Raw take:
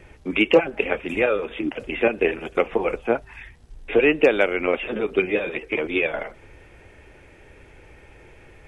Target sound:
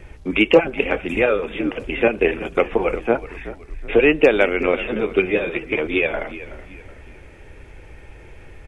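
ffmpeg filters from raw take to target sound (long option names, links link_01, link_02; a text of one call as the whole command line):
ffmpeg -i in.wav -filter_complex "[0:a]lowshelf=frequency=88:gain=8.5,asplit=4[link_01][link_02][link_03][link_04];[link_02]adelay=374,afreqshift=-44,volume=-15.5dB[link_05];[link_03]adelay=748,afreqshift=-88,volume=-23.9dB[link_06];[link_04]adelay=1122,afreqshift=-132,volume=-32.3dB[link_07];[link_01][link_05][link_06][link_07]amix=inputs=4:normalize=0,volume=2.5dB" out.wav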